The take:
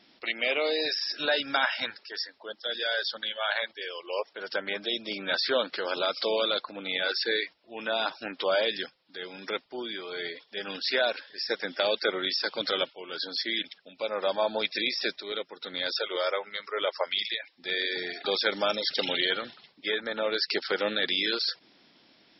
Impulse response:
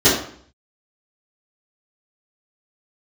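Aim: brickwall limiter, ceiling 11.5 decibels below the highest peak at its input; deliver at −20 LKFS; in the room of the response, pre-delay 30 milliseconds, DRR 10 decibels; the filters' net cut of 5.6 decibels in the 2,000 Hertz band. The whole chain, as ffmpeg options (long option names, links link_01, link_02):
-filter_complex "[0:a]equalizer=frequency=2000:width_type=o:gain=-7.5,alimiter=level_in=1dB:limit=-24dB:level=0:latency=1,volume=-1dB,asplit=2[link_01][link_02];[1:a]atrim=start_sample=2205,adelay=30[link_03];[link_02][link_03]afir=irnorm=-1:irlink=0,volume=-33.5dB[link_04];[link_01][link_04]amix=inputs=2:normalize=0,volume=15dB"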